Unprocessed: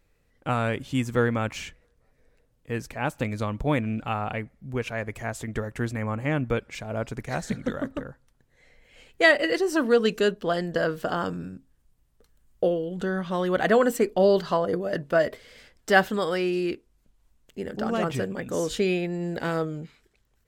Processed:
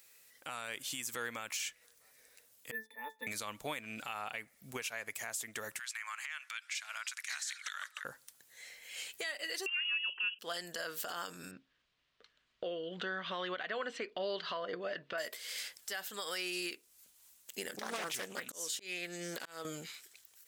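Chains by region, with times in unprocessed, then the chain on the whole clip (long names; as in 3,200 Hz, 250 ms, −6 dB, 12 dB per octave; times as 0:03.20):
0:02.71–0:03.27: Chebyshev band-pass filter 260–8,600 Hz, order 3 + resonances in every octave A, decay 0.16 s + linearly interpolated sample-rate reduction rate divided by 3×
0:05.79–0:08.05: high-pass filter 1,300 Hz 24 dB per octave + downward compressor 5 to 1, threshold −39 dBFS + high-frequency loss of the air 51 metres
0:09.66–0:10.39: voice inversion scrambler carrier 3,100 Hz + parametric band 1,000 Hz +12 dB 0.33 octaves
0:11.51–0:15.18: low-pass filter 3,600 Hz 24 dB per octave + notch filter 840 Hz, Q 8.5
0:17.74–0:19.65: high-pass filter 120 Hz + volume swells 668 ms + highs frequency-modulated by the lows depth 0.41 ms
whole clip: first difference; downward compressor 4 to 1, threshold −54 dBFS; brickwall limiter −45.5 dBFS; level +18 dB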